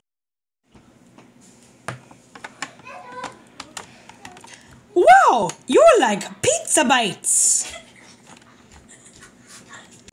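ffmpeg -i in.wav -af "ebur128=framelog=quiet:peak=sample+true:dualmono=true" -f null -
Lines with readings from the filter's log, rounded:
Integrated loudness:
  I:         -12.6 LUFS
  Threshold: -27.5 LUFS
Loudness range:
  LRA:        22.0 LU
  Threshold: -36.4 LUFS
  LRA low:   -34.6 LUFS
  LRA high:  -12.6 LUFS
Sample peak:
  Peak:       -1.5 dBFS
True peak:
  Peak:       -1.5 dBFS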